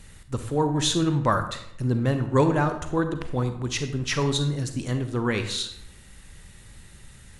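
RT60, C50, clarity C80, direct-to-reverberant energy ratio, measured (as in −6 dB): 0.70 s, 9.5 dB, 11.5 dB, 8.0 dB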